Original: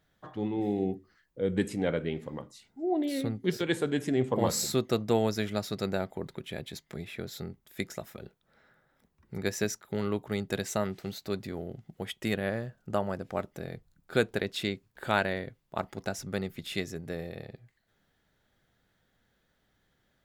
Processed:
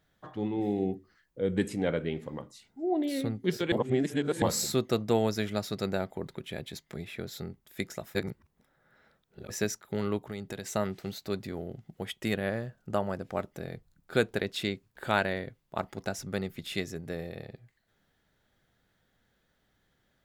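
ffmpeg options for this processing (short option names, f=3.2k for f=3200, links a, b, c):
-filter_complex "[0:a]asplit=3[a][b][c];[a]afade=t=out:st=10.18:d=0.02[d];[b]acompressor=threshold=-35dB:ratio=3:attack=3.2:release=140:knee=1:detection=peak,afade=t=in:st=10.18:d=0.02,afade=t=out:st=10.73:d=0.02[e];[c]afade=t=in:st=10.73:d=0.02[f];[d][e][f]amix=inputs=3:normalize=0,asplit=5[g][h][i][j][k];[g]atrim=end=3.722[l];[h]atrim=start=3.718:end=4.422,asetpts=PTS-STARTPTS,areverse[m];[i]atrim=start=4.418:end=8.152[n];[j]atrim=start=8.148:end=9.502,asetpts=PTS-STARTPTS,areverse[o];[k]atrim=start=9.498[p];[l][m]acrossfade=d=0.004:c1=hsin:c2=hsin[q];[q][n]acrossfade=d=0.004:c1=hsin:c2=hsin[r];[r][o]acrossfade=d=0.004:c1=hsin:c2=hsin[s];[s][p]acrossfade=d=0.004:c1=hsin:c2=hsin"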